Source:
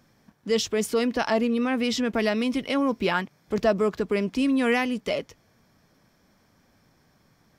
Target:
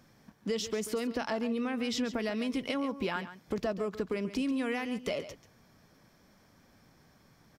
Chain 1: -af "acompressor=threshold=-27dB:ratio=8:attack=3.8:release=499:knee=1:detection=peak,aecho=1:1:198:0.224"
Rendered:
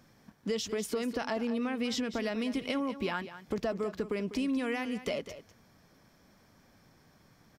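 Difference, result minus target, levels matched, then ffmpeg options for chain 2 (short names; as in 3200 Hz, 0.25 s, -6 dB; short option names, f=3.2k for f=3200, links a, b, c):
echo 60 ms late
-af "acompressor=threshold=-27dB:ratio=8:attack=3.8:release=499:knee=1:detection=peak,aecho=1:1:138:0.224"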